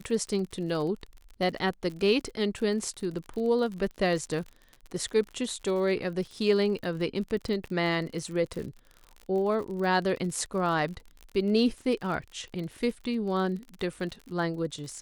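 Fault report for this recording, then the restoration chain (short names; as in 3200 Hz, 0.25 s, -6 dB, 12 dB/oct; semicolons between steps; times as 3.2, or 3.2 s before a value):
crackle 48/s -36 dBFS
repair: de-click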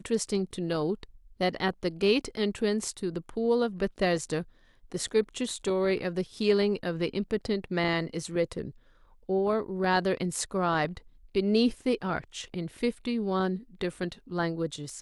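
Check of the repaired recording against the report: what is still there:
none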